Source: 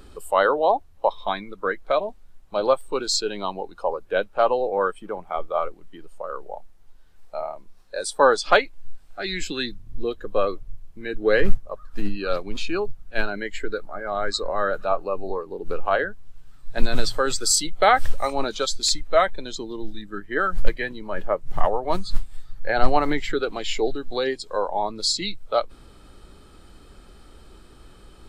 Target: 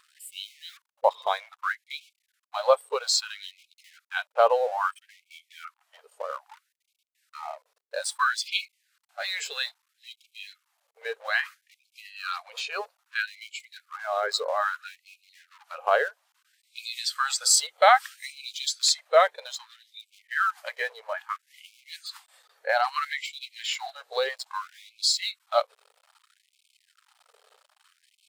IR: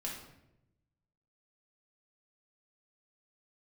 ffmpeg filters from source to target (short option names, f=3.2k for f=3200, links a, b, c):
-af "aeval=exprs='sgn(val(0))*max(abs(val(0))-0.00562,0)':c=same,aeval=exprs='val(0)+0.00398*(sin(2*PI*60*n/s)+sin(2*PI*2*60*n/s)/2+sin(2*PI*3*60*n/s)/3+sin(2*PI*4*60*n/s)/4+sin(2*PI*5*60*n/s)/5)':c=same,afftfilt=real='re*gte(b*sr/1024,400*pow(2200/400,0.5+0.5*sin(2*PI*0.61*pts/sr)))':imag='im*gte(b*sr/1024,400*pow(2200/400,0.5+0.5*sin(2*PI*0.61*pts/sr)))':win_size=1024:overlap=0.75"